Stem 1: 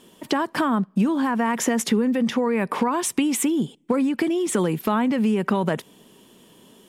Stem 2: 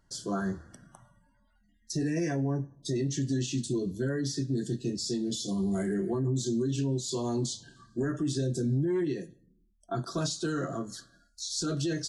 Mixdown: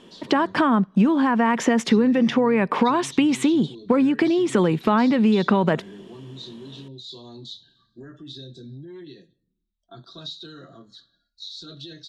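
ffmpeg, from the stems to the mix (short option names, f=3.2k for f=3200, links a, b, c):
-filter_complex "[0:a]lowpass=4.5k,volume=3dB[a];[1:a]lowpass=f=3.8k:t=q:w=12,volume=-12dB[b];[a][b]amix=inputs=2:normalize=0"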